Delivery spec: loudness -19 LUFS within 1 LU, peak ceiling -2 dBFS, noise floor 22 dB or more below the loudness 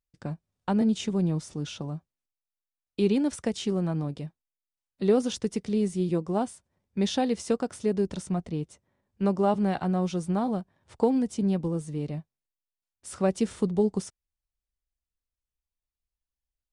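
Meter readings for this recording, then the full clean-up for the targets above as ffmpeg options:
loudness -28.0 LUFS; peak -11.5 dBFS; loudness target -19.0 LUFS
-> -af "volume=9dB"

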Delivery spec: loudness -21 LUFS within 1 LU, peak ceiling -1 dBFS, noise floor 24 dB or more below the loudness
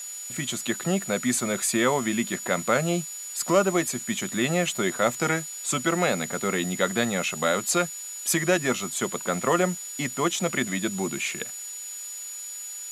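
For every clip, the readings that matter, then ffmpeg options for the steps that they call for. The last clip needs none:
steady tone 6900 Hz; tone level -35 dBFS; noise floor -37 dBFS; noise floor target -50 dBFS; loudness -26.0 LUFS; peak -6.5 dBFS; loudness target -21.0 LUFS
-> -af "bandreject=f=6.9k:w=30"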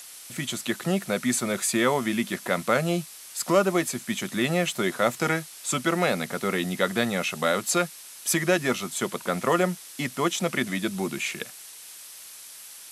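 steady tone none; noise floor -44 dBFS; noise floor target -50 dBFS
-> -af "afftdn=nr=6:nf=-44"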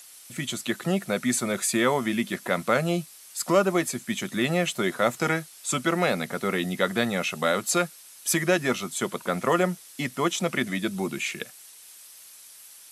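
noise floor -49 dBFS; noise floor target -50 dBFS
-> -af "afftdn=nr=6:nf=-49"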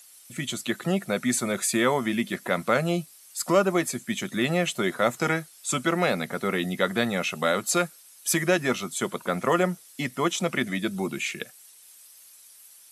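noise floor -52 dBFS; loudness -26.0 LUFS; peak -7.0 dBFS; loudness target -21.0 LUFS
-> -af "volume=5dB"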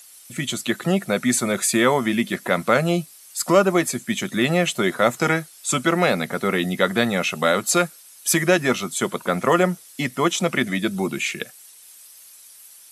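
loudness -21.0 LUFS; peak -2.0 dBFS; noise floor -47 dBFS

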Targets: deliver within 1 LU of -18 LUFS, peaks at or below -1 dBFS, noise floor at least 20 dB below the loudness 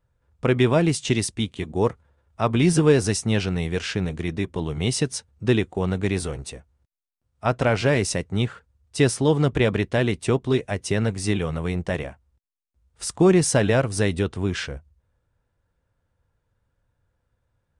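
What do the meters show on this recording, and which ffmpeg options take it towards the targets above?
loudness -23.0 LUFS; peak -6.5 dBFS; loudness target -18.0 LUFS
-> -af "volume=5dB"

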